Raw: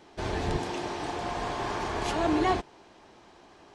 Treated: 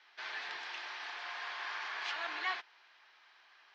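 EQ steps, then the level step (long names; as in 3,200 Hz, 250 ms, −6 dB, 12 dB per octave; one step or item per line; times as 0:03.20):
Chebyshev band-pass filter 1,600–5,300 Hz, order 2
high-frequency loss of the air 160 metres
+1.5 dB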